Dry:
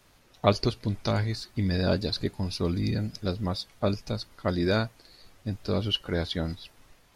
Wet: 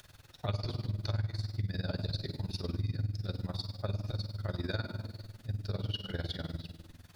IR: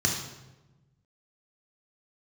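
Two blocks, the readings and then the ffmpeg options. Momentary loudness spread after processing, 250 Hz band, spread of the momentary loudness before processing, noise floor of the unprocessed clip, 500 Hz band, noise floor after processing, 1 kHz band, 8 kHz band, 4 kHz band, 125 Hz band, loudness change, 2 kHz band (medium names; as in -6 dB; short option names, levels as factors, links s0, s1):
7 LU, -12.5 dB, 9 LU, -60 dBFS, -14.0 dB, -58 dBFS, -13.5 dB, under -10 dB, -9.0 dB, -4.0 dB, -8.0 dB, -9.5 dB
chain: -filter_complex "[0:a]acompressor=mode=upward:threshold=0.00891:ratio=2.5,bandreject=f=80.11:t=h:w=4,bandreject=f=160.22:t=h:w=4,bandreject=f=240.33:t=h:w=4,bandreject=f=320.44:t=h:w=4,bandreject=f=400.55:t=h:w=4,bandreject=f=480.66:t=h:w=4,bandreject=f=560.77:t=h:w=4,bandreject=f=640.88:t=h:w=4,bandreject=f=720.99:t=h:w=4,bandreject=f=801.1:t=h:w=4,bandreject=f=881.21:t=h:w=4,asplit=2[s0][s1];[1:a]atrim=start_sample=2205,asetrate=34398,aresample=44100[s2];[s1][s2]afir=irnorm=-1:irlink=0,volume=0.158[s3];[s0][s3]amix=inputs=2:normalize=0,acrusher=bits=8:mix=0:aa=0.5,tremolo=f=20:d=0.857,acompressor=threshold=0.0562:ratio=4,volume=0.531"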